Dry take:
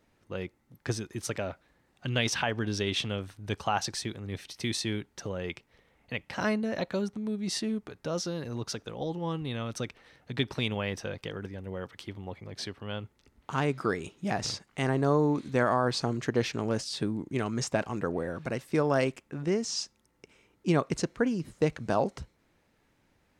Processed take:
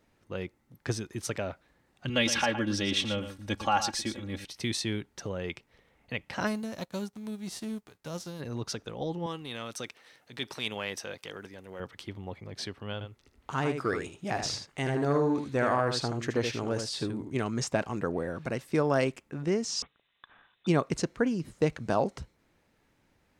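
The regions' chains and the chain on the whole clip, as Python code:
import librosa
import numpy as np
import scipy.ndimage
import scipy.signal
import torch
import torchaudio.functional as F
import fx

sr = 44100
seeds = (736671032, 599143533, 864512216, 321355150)

y = fx.chain(x, sr, fx.comb(ms=3.6, depth=0.77),
    fx.echo_single(ms=115, db=-10.5), at=(2.09, 4.45))
y = fx.envelope_flatten(y, sr, power=0.6, at=(6.46, 8.39), fade=0.02)
y = fx.dynamic_eq(y, sr, hz=2100.0, q=0.71, threshold_db=-46.0, ratio=4.0, max_db=-6, at=(6.46, 8.39), fade=0.02)
y = fx.upward_expand(y, sr, threshold_db=-46.0, expansion=1.5, at=(6.46, 8.39), fade=0.02)
y = fx.chain(y, sr, fx.highpass(hz=420.0, slope=6),
    fx.high_shelf(hz=4800.0, db=9.0),
    fx.transient(attack_db=-7, sustain_db=-1), at=(9.26, 11.8))
y = fx.chain(y, sr, fx.peak_eq(hz=190.0, db=-6.0, octaves=0.48),
    fx.echo_single(ms=78, db=-7.5),
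    fx.transformer_sat(knee_hz=490.0), at=(12.93, 17.35))
y = fx.chain(y, sr, fx.tilt_eq(slope=4.0),
    fx.freq_invert(carrier_hz=3900), at=(19.82, 20.67))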